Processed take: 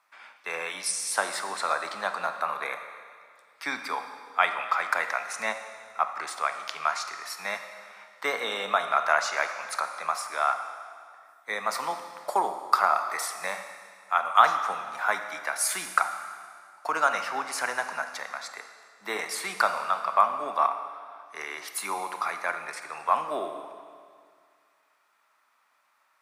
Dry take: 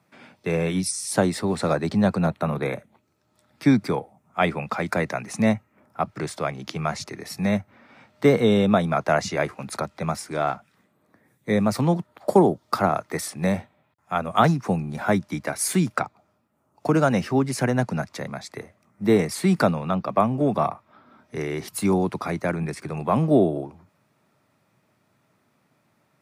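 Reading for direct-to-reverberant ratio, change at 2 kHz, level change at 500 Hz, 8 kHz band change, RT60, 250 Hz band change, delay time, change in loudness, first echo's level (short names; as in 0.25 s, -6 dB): 7.0 dB, +2.5 dB, -11.0 dB, -1.0 dB, 2.0 s, -25.5 dB, none, -4.5 dB, none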